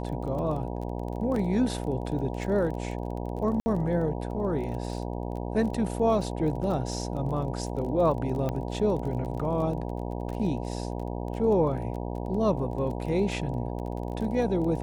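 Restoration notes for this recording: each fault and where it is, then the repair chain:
buzz 60 Hz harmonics 16 -33 dBFS
crackle 23 per s -35 dBFS
1.36 s: dropout 2.6 ms
3.60–3.66 s: dropout 60 ms
8.49 s: pop -18 dBFS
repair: de-click; de-hum 60 Hz, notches 16; interpolate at 1.36 s, 2.6 ms; interpolate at 3.60 s, 60 ms

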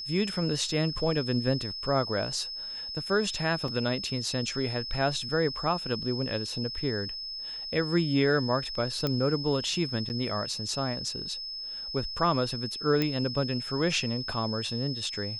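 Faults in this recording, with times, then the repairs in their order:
whine 5.2 kHz -35 dBFS
3.68 s: dropout 2.7 ms
9.07 s: pop -15 dBFS
10.09–10.10 s: dropout 9.8 ms
13.02 s: pop -14 dBFS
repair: de-click; band-stop 5.2 kHz, Q 30; interpolate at 3.68 s, 2.7 ms; interpolate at 10.09 s, 9.8 ms

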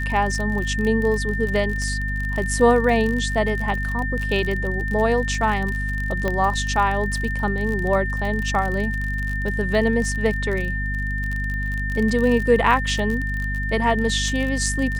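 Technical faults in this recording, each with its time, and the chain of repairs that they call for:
crackle 40 per s -25 dBFS
hum 50 Hz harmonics 5 -26 dBFS
whine 1.8 kHz -27 dBFS
6.28 s: pop -11 dBFS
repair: de-click; band-stop 1.8 kHz, Q 30; de-hum 50 Hz, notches 5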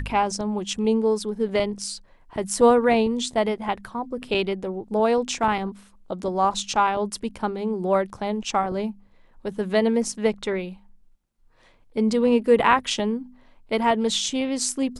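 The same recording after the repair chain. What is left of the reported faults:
nothing left

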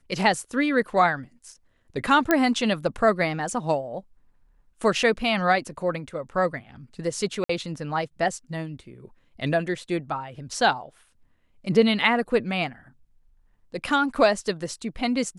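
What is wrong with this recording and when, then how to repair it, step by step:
2.31 s: pop -6 dBFS
7.44–7.49 s: dropout 54 ms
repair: de-click; interpolate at 7.44 s, 54 ms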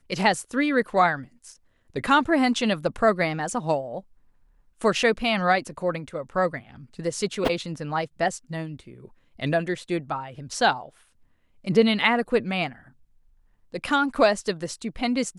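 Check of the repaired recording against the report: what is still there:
nothing left

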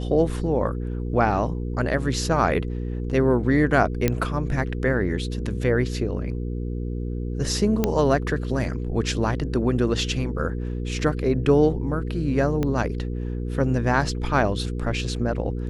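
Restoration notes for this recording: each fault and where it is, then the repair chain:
hum 60 Hz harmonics 8 -28 dBFS
4.08 s: pop -7 dBFS
7.84 s: pop -7 dBFS
12.63 s: pop -13 dBFS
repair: de-click; de-hum 60 Hz, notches 8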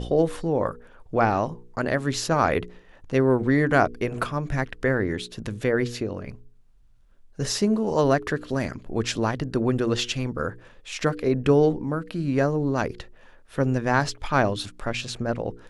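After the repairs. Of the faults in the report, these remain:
12.63 s: pop

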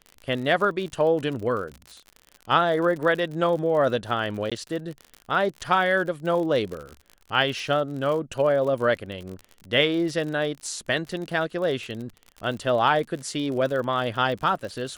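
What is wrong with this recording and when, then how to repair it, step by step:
crackle 55 per s -32 dBFS
4.50–4.52 s: dropout 16 ms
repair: de-click; interpolate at 4.50 s, 16 ms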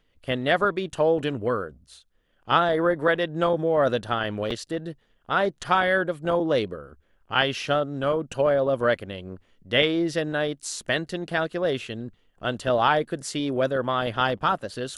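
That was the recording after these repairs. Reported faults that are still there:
nothing left

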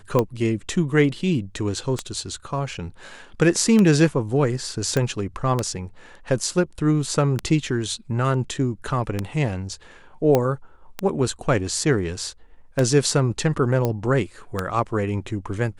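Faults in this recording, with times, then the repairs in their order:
tick 33 1/3 rpm -8 dBFS
4.97 s: pop -10 dBFS
10.35 s: pop -6 dBFS
13.85 s: pop -10 dBFS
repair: de-click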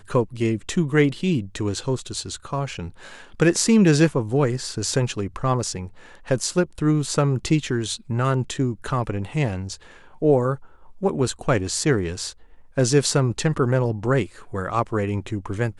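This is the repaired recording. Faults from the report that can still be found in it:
nothing left

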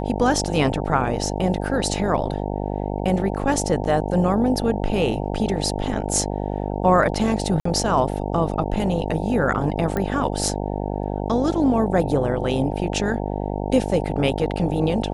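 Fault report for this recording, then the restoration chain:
buzz 50 Hz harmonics 18 -26 dBFS
7.60–7.65 s: dropout 54 ms
9.97 s: pop -12 dBFS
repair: de-click; de-hum 50 Hz, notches 18; interpolate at 7.60 s, 54 ms

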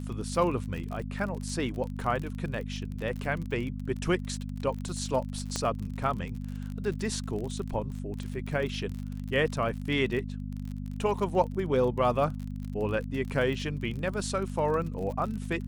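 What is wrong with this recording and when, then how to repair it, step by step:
crackle 46 per s -35 dBFS
hum 50 Hz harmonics 5 -36 dBFS
5.56 s: pop -16 dBFS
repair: de-click; de-hum 50 Hz, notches 5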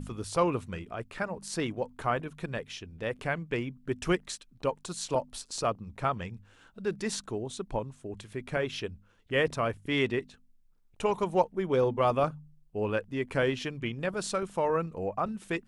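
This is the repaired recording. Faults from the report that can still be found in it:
5.56 s: pop

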